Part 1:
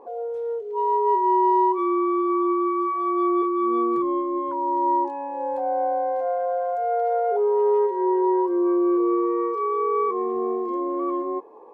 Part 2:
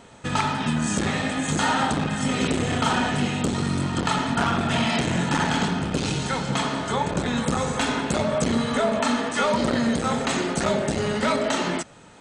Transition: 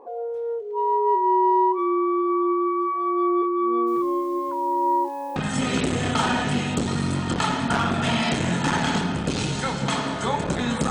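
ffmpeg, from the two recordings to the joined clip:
-filter_complex "[0:a]asplit=3[s0][s1][s2];[s0]afade=t=out:st=3.86:d=0.02[s3];[s1]acrusher=bits=7:mix=0:aa=0.5,afade=t=in:st=3.86:d=0.02,afade=t=out:st=5.36:d=0.02[s4];[s2]afade=t=in:st=5.36:d=0.02[s5];[s3][s4][s5]amix=inputs=3:normalize=0,apad=whole_dur=10.9,atrim=end=10.9,atrim=end=5.362[s6];[1:a]atrim=start=2.028:end=7.57[s7];[s6][s7]acrossfade=d=0.004:c1=hsin:c2=hsin"

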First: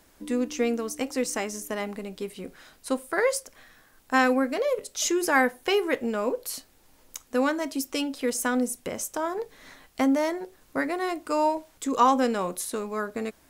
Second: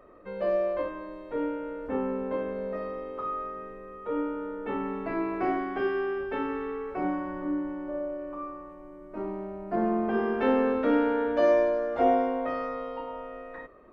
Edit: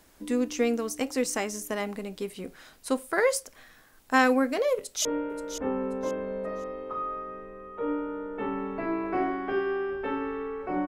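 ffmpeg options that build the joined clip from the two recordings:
-filter_complex "[0:a]apad=whole_dur=10.87,atrim=end=10.87,atrim=end=5.052[s0];[1:a]atrim=start=1.328:end=7.15[s1];[s0][s1]acrossfade=d=0.004:c1=hsin:c2=hsin,asplit=2[s2][s3];[s3]afade=t=in:st=4.76:d=0.01,afade=t=out:st=5.05:d=0.01,aecho=0:1:530|1060|1590:0.281838|0.0845515|0.0253654[s4];[s2][s4]amix=inputs=2:normalize=0"

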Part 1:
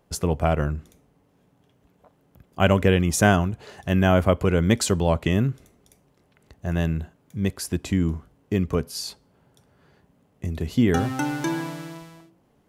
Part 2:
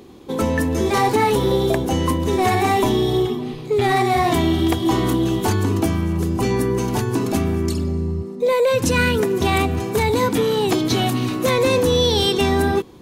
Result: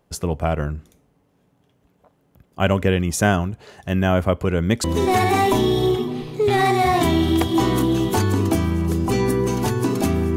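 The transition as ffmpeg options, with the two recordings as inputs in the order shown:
-filter_complex "[0:a]apad=whole_dur=10.36,atrim=end=10.36,atrim=end=4.842[s0];[1:a]atrim=start=2.148:end=7.67[s1];[s0][s1]acrossfade=d=0.004:c1=hsin:c2=hsin"

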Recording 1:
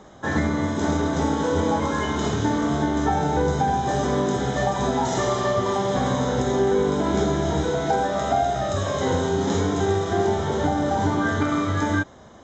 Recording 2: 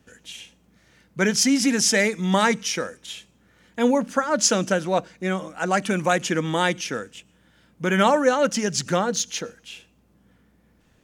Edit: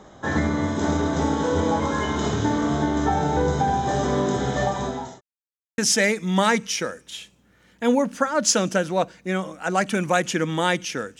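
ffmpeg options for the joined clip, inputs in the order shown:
-filter_complex "[0:a]apad=whole_dur=11.19,atrim=end=11.19,asplit=2[s0][s1];[s0]atrim=end=5.21,asetpts=PTS-STARTPTS,afade=t=out:st=4.63:d=0.58[s2];[s1]atrim=start=5.21:end=5.78,asetpts=PTS-STARTPTS,volume=0[s3];[1:a]atrim=start=1.74:end=7.15,asetpts=PTS-STARTPTS,afade=t=in:d=0.004:c=hsin[s4];[s2][s3][s4]concat=n=3:v=0:a=1"

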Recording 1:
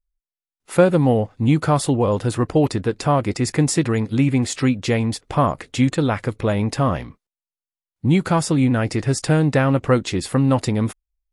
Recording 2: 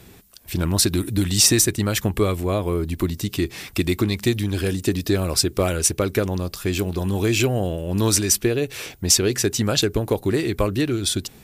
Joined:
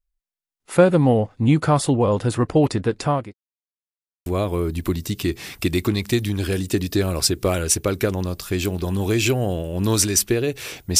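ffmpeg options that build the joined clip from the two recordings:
-filter_complex "[0:a]apad=whole_dur=10.99,atrim=end=10.99,asplit=2[s0][s1];[s0]atrim=end=3.34,asetpts=PTS-STARTPTS,afade=t=out:st=2.89:d=0.45:c=qsin[s2];[s1]atrim=start=3.34:end=4.26,asetpts=PTS-STARTPTS,volume=0[s3];[1:a]atrim=start=2.4:end=9.13,asetpts=PTS-STARTPTS,afade=t=in:d=0.004:c=hsin[s4];[s2][s3][s4]concat=n=3:v=0:a=1"

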